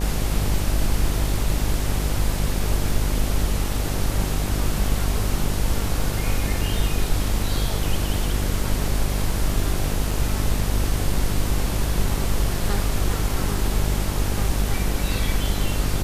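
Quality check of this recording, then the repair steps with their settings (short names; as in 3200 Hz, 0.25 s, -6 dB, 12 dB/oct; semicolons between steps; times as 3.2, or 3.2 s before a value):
buzz 50 Hz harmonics 18 -25 dBFS
10.11 gap 4.1 ms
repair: de-hum 50 Hz, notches 18; interpolate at 10.11, 4.1 ms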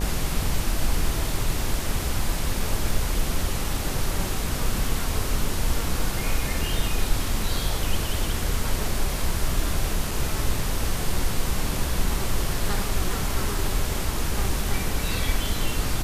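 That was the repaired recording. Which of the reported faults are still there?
none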